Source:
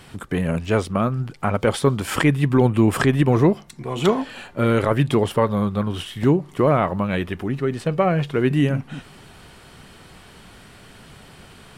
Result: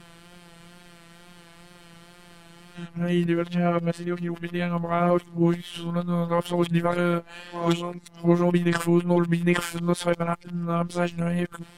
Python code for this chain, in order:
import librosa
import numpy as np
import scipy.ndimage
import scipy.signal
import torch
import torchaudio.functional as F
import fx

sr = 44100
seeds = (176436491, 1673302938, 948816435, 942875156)

y = np.flip(x).copy()
y = fx.robotise(y, sr, hz=172.0)
y = fx.wow_flutter(y, sr, seeds[0], rate_hz=2.1, depth_cents=35.0)
y = F.gain(torch.from_numpy(y), -2.0).numpy()